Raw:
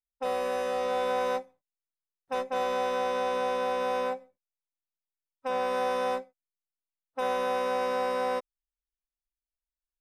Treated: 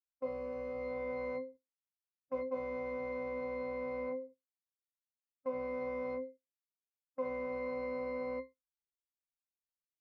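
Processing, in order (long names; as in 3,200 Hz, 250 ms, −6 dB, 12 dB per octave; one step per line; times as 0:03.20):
resonances in every octave C, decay 0.21 s
noise gate −58 dBFS, range −10 dB
level +5 dB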